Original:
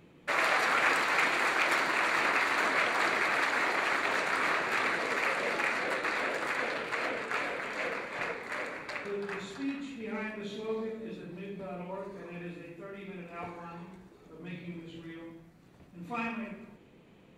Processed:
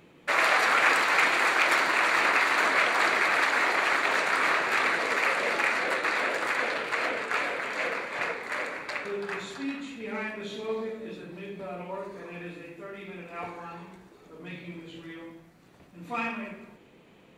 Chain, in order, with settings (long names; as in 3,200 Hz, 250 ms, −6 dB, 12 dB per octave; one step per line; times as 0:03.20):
low-shelf EQ 270 Hz −7.5 dB
level +5 dB